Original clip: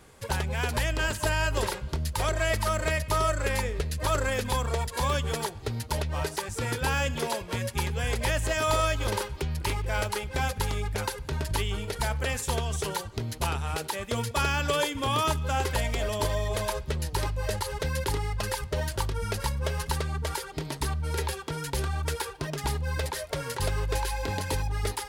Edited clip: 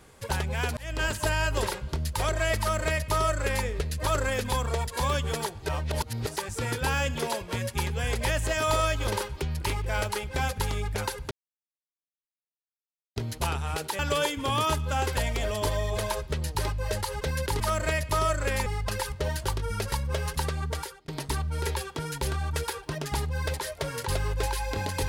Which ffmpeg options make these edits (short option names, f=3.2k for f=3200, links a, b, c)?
-filter_complex "[0:a]asplit=10[a][b][c][d][e][f][g][h][i][j];[a]atrim=end=0.77,asetpts=PTS-STARTPTS,afade=t=out:st=0.766:d=0.004:c=hsin[k];[b]atrim=start=0.77:end=5.662,asetpts=PTS-STARTPTS,afade=t=in:d=0.25[l];[c]atrim=start=5.658:end=6.272,asetpts=PTS-STARTPTS,areverse[m];[d]atrim=start=6.268:end=11.31,asetpts=PTS-STARTPTS,afade=t=out:st=5.038:d=0.004:c=hsin[n];[e]atrim=start=11.31:end=13.16,asetpts=PTS-STARTPTS,volume=0[o];[f]atrim=start=13.16:end=13.992,asetpts=PTS-STARTPTS,afade=t=in:d=0.004:c=hsin[p];[g]atrim=start=14.568:end=18.182[q];[h]atrim=start=2.588:end=3.652[r];[i]atrim=start=18.178:end=20.6,asetpts=PTS-STARTPTS,afade=t=out:st=2.052:d=0.37[s];[j]atrim=start=20.6,asetpts=PTS-STARTPTS,afade=t=in:d=0.004:c=hsin[t];[k][l]concat=n=2:v=0:a=1[u];[u][m]acrossfade=d=0.004:c1=hsin:c2=hsin[v];[n][o][p]concat=n=3:v=0:a=1[w];[v][w]acrossfade=d=0.004:c1=hsin:c2=hsin[x];[x][q]acrossfade=d=0.004:c1=hsin:c2=hsin[y];[y][r]acrossfade=d=0.004:c1=hsin:c2=hsin[z];[s][t]concat=n=2:v=0:a=1[aa];[z][aa]acrossfade=d=0.004:c1=hsin:c2=hsin"